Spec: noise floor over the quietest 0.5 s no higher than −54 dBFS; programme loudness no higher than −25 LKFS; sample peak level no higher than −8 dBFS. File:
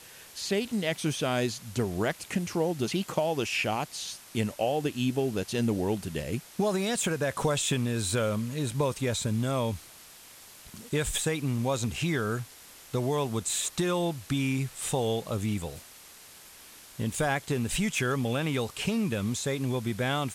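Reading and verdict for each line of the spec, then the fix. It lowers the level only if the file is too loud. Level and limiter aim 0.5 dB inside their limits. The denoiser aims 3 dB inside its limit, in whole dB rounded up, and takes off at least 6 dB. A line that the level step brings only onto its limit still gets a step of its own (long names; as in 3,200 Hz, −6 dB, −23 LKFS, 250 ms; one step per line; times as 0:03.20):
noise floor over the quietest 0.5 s −51 dBFS: out of spec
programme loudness −29.5 LKFS: in spec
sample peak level −13.5 dBFS: in spec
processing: broadband denoise 6 dB, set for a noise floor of −51 dBFS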